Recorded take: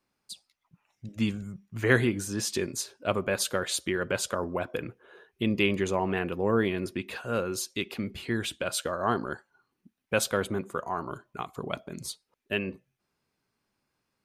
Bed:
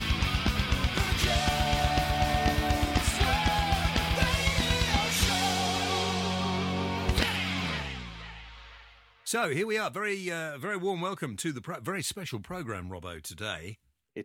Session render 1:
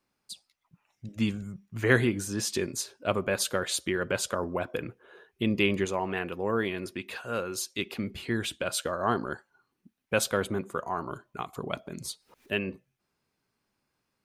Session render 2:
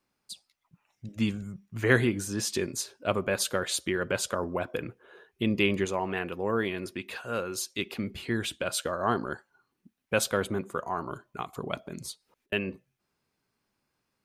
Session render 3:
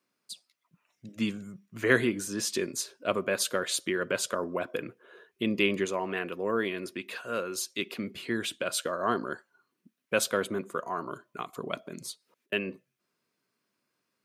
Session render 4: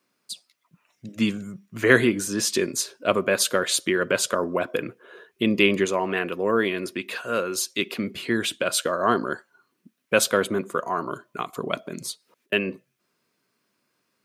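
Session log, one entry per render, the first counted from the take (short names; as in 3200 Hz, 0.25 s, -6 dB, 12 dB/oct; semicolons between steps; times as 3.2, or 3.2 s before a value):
5.85–7.79 low shelf 470 Hz -6 dB; 11.53–12.61 upward compressor, threshold -42 dBFS
11.96–12.52 fade out
HPF 190 Hz 12 dB/oct; notch 820 Hz, Q 5.2
gain +7 dB; limiter -2 dBFS, peak gain reduction 1 dB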